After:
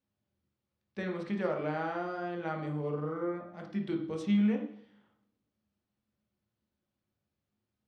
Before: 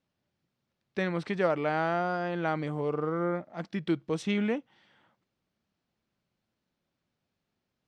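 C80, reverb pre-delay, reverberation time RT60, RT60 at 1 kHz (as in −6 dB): 10.5 dB, 3 ms, 0.60 s, 0.55 s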